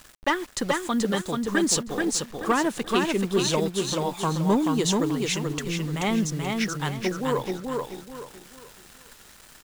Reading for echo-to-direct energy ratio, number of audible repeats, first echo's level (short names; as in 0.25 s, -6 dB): -3.0 dB, 4, -3.5 dB